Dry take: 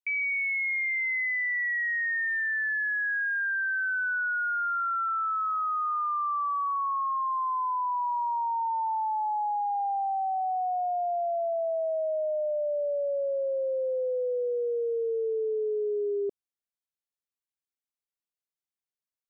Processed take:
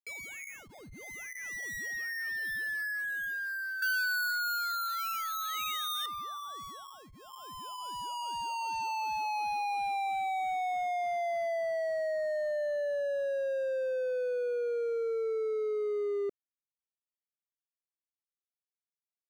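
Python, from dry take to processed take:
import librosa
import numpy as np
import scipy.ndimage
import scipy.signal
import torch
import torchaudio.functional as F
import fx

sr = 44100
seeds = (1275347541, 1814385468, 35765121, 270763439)

y = scipy.ndimage.median_filter(x, 41, mode='constant')
y = fx.high_shelf_res(y, sr, hz=1500.0, db=13.5, q=3.0, at=(3.82, 6.06))
y = fx.rider(y, sr, range_db=4, speed_s=2.0)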